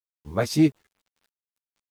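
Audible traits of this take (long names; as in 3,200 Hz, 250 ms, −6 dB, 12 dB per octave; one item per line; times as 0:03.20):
a quantiser's noise floor 10 bits, dither none
tremolo saw down 2 Hz, depth 45%
a shimmering, thickened sound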